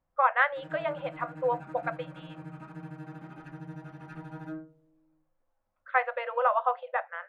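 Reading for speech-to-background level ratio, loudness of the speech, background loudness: 15.0 dB, −29.5 LKFS, −44.5 LKFS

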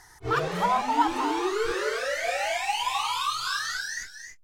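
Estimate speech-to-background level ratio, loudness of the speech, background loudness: 0.5 dB, −28.0 LKFS, −28.5 LKFS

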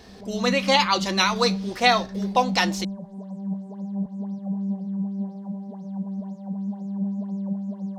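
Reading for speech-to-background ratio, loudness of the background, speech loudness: 8.5 dB, −30.5 LKFS, −22.0 LKFS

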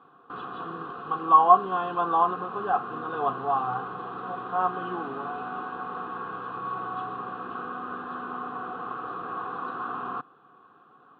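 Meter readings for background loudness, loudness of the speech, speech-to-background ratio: −35.5 LKFS, −24.5 LKFS, 11.0 dB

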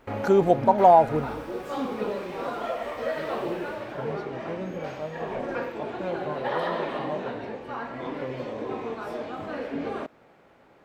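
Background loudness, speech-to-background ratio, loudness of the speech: −32.5 LKFS, 13.0 dB, −19.5 LKFS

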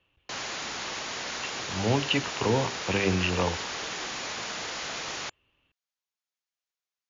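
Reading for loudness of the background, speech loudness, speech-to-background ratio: −33.5 LKFS, −28.0 LKFS, 5.5 dB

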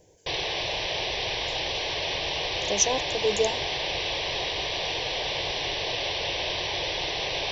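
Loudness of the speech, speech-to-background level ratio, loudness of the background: −27.0 LKFS, 0.5 dB, −27.5 LKFS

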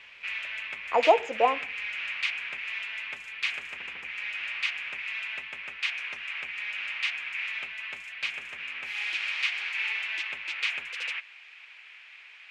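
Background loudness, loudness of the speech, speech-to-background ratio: −31.5 LKFS, −25.5 LKFS, 6.0 dB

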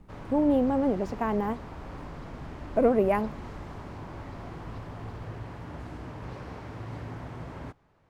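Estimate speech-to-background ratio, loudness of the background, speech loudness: 15.0 dB, −41.5 LKFS, −26.5 LKFS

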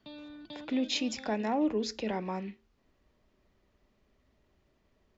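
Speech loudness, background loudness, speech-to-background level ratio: −32.5 LKFS, −48.5 LKFS, 16.0 dB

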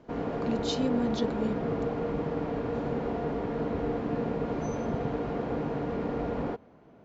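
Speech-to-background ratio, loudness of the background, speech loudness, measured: −1.0 dB, −32.0 LKFS, −33.0 LKFS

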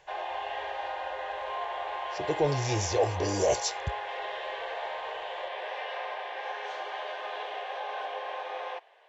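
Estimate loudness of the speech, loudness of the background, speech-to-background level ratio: −29.5 LKFS, −36.0 LKFS, 6.5 dB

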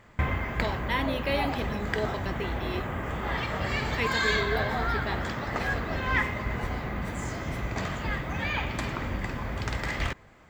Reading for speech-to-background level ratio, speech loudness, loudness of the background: −3.0 dB, −33.5 LKFS, −30.5 LKFS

